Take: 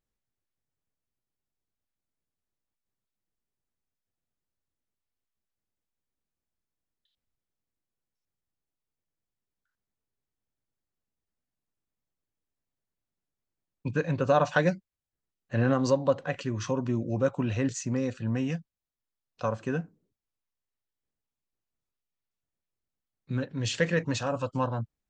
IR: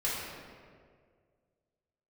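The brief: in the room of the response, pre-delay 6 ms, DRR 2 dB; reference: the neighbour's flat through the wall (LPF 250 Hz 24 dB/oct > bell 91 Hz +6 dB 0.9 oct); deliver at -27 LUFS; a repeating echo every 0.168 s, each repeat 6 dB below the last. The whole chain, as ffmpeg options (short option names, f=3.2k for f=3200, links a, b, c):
-filter_complex "[0:a]aecho=1:1:168|336|504|672|840|1008:0.501|0.251|0.125|0.0626|0.0313|0.0157,asplit=2[a][b];[1:a]atrim=start_sample=2205,adelay=6[c];[b][c]afir=irnorm=-1:irlink=0,volume=-9.5dB[d];[a][d]amix=inputs=2:normalize=0,lowpass=f=250:w=0.5412,lowpass=f=250:w=1.3066,equalizer=f=91:t=o:w=0.9:g=6,volume=2dB"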